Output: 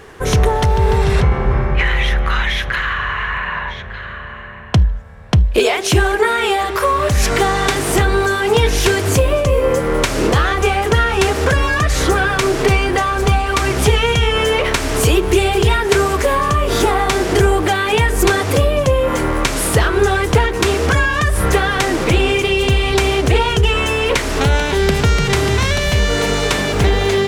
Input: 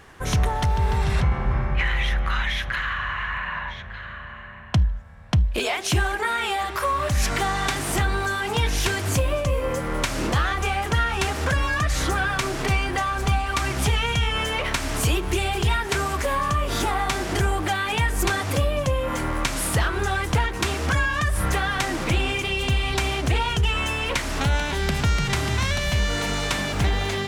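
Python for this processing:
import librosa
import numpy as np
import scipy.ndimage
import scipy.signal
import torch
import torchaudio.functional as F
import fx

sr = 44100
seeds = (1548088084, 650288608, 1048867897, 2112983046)

y = fx.peak_eq(x, sr, hz=430.0, db=10.5, octaves=0.48)
y = F.gain(torch.from_numpy(y), 7.0).numpy()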